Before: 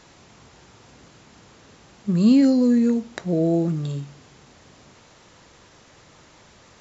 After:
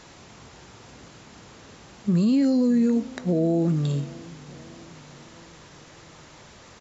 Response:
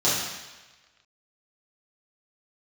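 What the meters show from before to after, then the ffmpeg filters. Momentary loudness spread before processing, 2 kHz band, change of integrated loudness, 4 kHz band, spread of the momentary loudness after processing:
14 LU, -2.0 dB, -2.5 dB, -2.0 dB, 18 LU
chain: -filter_complex "[0:a]alimiter=limit=-17.5dB:level=0:latency=1:release=127,asplit=2[a][b];[b]adelay=609,lowpass=f=2k:p=1,volume=-21dB,asplit=2[c][d];[d]adelay=609,lowpass=f=2k:p=1,volume=0.54,asplit=2[e][f];[f]adelay=609,lowpass=f=2k:p=1,volume=0.54,asplit=2[g][h];[h]adelay=609,lowpass=f=2k:p=1,volume=0.54[i];[a][c][e][g][i]amix=inputs=5:normalize=0,volume=3dB"

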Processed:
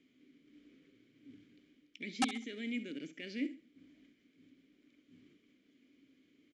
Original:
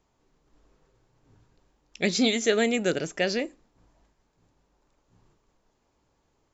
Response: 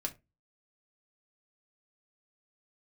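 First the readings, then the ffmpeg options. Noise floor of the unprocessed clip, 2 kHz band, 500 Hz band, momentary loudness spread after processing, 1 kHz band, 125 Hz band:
-72 dBFS, -14.5 dB, -24.0 dB, 23 LU, -6.0 dB, -18.0 dB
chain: -filter_complex "[0:a]lowshelf=f=72:g=-10,areverse,acompressor=threshold=-33dB:ratio=6,areverse,alimiter=level_in=11.5dB:limit=-24dB:level=0:latency=1:release=457,volume=-11.5dB,acrusher=bits=4:mode=log:mix=0:aa=0.000001,asplit=3[a][b][c];[a]bandpass=f=270:t=q:w=8,volume=0dB[d];[b]bandpass=f=2.29k:t=q:w=8,volume=-6dB[e];[c]bandpass=f=3.01k:t=q:w=8,volume=-9dB[f];[d][e][f]amix=inputs=3:normalize=0,aeval=exprs='(mod(112*val(0)+1,2)-1)/112':c=same,aecho=1:1:66|132|198:0.188|0.0546|0.0158,aresample=22050,aresample=44100,volume=16.5dB"

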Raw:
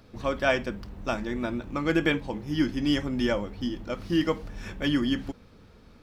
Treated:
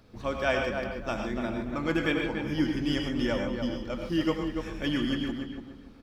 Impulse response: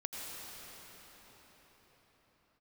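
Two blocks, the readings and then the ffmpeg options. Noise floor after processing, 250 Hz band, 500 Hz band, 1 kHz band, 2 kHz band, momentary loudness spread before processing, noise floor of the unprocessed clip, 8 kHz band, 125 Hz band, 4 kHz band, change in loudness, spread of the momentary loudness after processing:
-49 dBFS, -1.5 dB, -1.5 dB, -1.5 dB, -1.5 dB, 10 LU, -53 dBFS, n/a, -1.5 dB, -1.5 dB, -2.0 dB, 7 LU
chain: -filter_complex "[0:a]asplit=2[a][b];[b]adelay=288,lowpass=f=2.1k:p=1,volume=-6dB,asplit=2[c][d];[d]adelay=288,lowpass=f=2.1k:p=1,volume=0.29,asplit=2[e][f];[f]adelay=288,lowpass=f=2.1k:p=1,volume=0.29,asplit=2[g][h];[h]adelay=288,lowpass=f=2.1k:p=1,volume=0.29[i];[a][c][e][g][i]amix=inputs=5:normalize=0[j];[1:a]atrim=start_sample=2205,afade=t=out:st=0.2:d=0.01,atrim=end_sample=9261[k];[j][k]afir=irnorm=-1:irlink=0"

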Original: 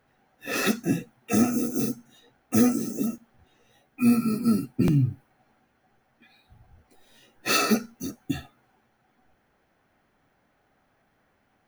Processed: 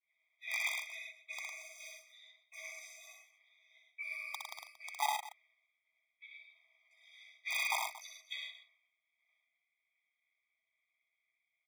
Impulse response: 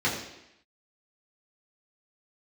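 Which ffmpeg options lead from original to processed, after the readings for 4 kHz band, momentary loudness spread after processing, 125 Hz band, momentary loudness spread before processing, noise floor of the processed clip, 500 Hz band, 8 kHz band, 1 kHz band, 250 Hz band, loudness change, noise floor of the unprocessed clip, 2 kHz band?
-8.5 dB, 21 LU, under -40 dB, 13 LU, under -85 dBFS, -24.5 dB, -13.0 dB, -6.0 dB, under -40 dB, -14.5 dB, -69 dBFS, -5.0 dB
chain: -filter_complex "[0:a]agate=range=-33dB:threshold=-58dB:ratio=3:detection=peak,equalizer=f=90:w=0.57:g=-14,areverse,acompressor=threshold=-32dB:ratio=5,areverse,aeval=exprs='val(0)*sin(2*PI*160*n/s)':c=same,asplit=3[a][b][c];[a]bandpass=f=270:t=q:w=8,volume=0dB[d];[b]bandpass=f=2.29k:t=q:w=8,volume=-6dB[e];[c]bandpass=f=3.01k:t=q:w=8,volume=-9dB[f];[d][e][f]amix=inputs=3:normalize=0,aeval=exprs='(mod(133*val(0)+1,2)-1)/133':c=same,asplit=2[g][h];[h]aecho=0:1:62|105|144|229:0.631|0.596|0.178|0.158[i];[g][i]amix=inputs=2:normalize=0,afftfilt=real='re*eq(mod(floor(b*sr/1024/640),2),1)':imag='im*eq(mod(floor(b*sr/1024/640),2),1)':win_size=1024:overlap=0.75,volume=18dB"

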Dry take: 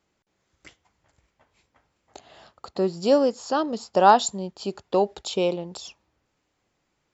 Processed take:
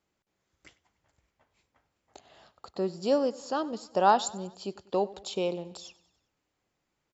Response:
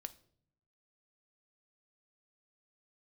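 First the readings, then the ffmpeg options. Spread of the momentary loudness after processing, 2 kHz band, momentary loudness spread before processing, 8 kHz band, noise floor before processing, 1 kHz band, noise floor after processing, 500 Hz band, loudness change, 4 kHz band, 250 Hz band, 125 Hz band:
19 LU, -6.5 dB, 19 LU, n/a, -75 dBFS, -6.5 dB, -81 dBFS, -6.5 dB, -6.5 dB, -6.5 dB, -6.5 dB, -6.5 dB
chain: -af "aecho=1:1:97|194|291|388:0.0944|0.0529|0.0296|0.0166,volume=-6.5dB"

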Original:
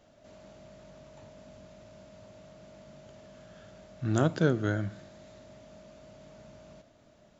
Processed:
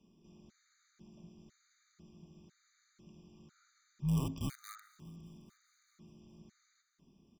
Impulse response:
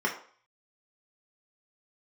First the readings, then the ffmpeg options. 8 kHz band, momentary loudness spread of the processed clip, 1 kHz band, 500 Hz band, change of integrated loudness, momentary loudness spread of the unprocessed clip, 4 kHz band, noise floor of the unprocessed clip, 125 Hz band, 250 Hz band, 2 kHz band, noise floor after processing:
n/a, 24 LU, -13.0 dB, -22.0 dB, -10.0 dB, 11 LU, -7.0 dB, -61 dBFS, -6.5 dB, -8.5 dB, -20.5 dB, -75 dBFS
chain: -filter_complex "[0:a]asplit=2[a][b];[b]aeval=exprs='(mod(12.6*val(0)+1,2)-1)/12.6':c=same,volume=-7dB[c];[a][c]amix=inputs=2:normalize=0,firequalizer=gain_entry='entry(100,0);entry(150,-16);entry(7600,-6)':delay=0.05:min_phase=1,afreqshift=-270,aecho=1:1:411|822|1233|1644:0.0794|0.0421|0.0223|0.0118,afftfilt=real='re*gt(sin(2*PI*1*pts/sr)*(1-2*mod(floor(b*sr/1024/1200),2)),0)':imag='im*gt(sin(2*PI*1*pts/sr)*(1-2*mod(floor(b*sr/1024/1200),2)),0)':win_size=1024:overlap=0.75,volume=1dB"

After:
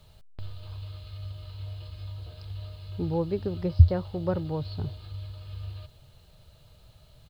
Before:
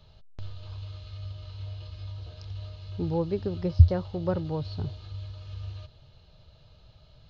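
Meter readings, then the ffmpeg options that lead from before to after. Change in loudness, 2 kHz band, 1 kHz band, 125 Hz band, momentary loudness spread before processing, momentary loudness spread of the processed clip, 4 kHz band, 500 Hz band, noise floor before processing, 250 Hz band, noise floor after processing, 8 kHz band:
0.0 dB, 0.0 dB, 0.0 dB, 0.0 dB, 20 LU, 20 LU, 0.0 dB, 0.0 dB, -57 dBFS, 0.0 dB, -56 dBFS, n/a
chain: -af "aresample=11025,aresample=44100,acrusher=bits=10:mix=0:aa=0.000001"

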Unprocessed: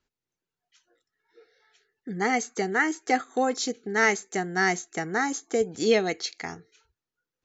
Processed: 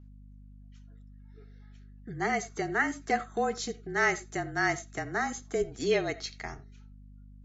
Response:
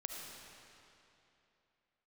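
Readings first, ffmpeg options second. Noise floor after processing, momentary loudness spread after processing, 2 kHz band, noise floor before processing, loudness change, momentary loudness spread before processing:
-51 dBFS, 12 LU, -4.0 dB, under -85 dBFS, -5.0 dB, 9 LU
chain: -filter_complex "[0:a]asubboost=boost=11:cutoff=66,afreqshift=-32,aeval=exprs='val(0)+0.00501*(sin(2*PI*50*n/s)+sin(2*PI*2*50*n/s)/2+sin(2*PI*3*50*n/s)/3+sin(2*PI*4*50*n/s)/4+sin(2*PI*5*50*n/s)/5)':c=same,asplit=2[a][b];[1:a]atrim=start_sample=2205,atrim=end_sample=4410,lowpass=3.4k[c];[b][c]afir=irnorm=-1:irlink=0,volume=-3dB[d];[a][d]amix=inputs=2:normalize=0,volume=-6dB" -ar 32000 -c:a libmp3lame -b:a 40k

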